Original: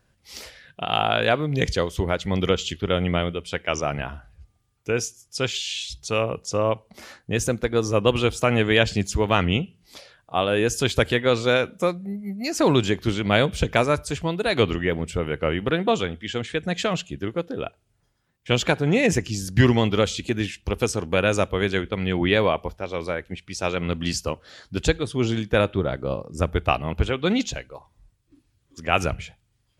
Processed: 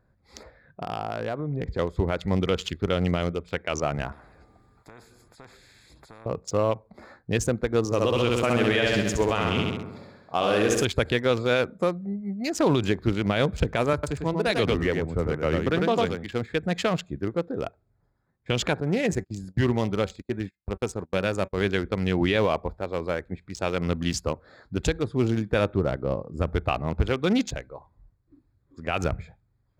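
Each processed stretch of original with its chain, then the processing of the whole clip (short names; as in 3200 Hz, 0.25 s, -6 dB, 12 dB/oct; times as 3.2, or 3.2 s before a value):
0.43–1.79 LPF 1500 Hz 6 dB/oct + compressor 4:1, threshold -26 dBFS
4.12–6.26 compressor 4:1, threshold -36 dBFS + spectral compressor 4:1
7.85–10.85 bell 67 Hz -8.5 dB 1.6 oct + flutter echo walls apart 11.4 m, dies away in 1.1 s
13.93–16.32 echo 0.1 s -4 dB + three-band expander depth 40%
18.8–21.58 high shelf 8900 Hz +4 dB + resonator 190 Hz, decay 0.24 s, mix 50% + gate -35 dBFS, range -30 dB
whole clip: Wiener smoothing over 15 samples; limiter -12 dBFS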